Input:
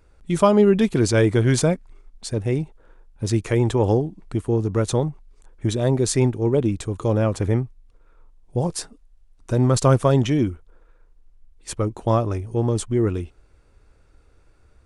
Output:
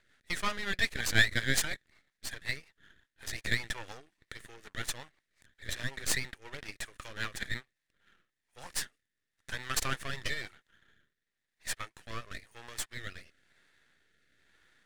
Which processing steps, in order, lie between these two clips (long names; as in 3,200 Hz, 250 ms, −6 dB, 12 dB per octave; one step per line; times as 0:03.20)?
high-pass with resonance 1,800 Hz, resonance Q 7.1
half-wave rectification
rotating-speaker cabinet horn 5.5 Hz, later 1 Hz, at 0:07.52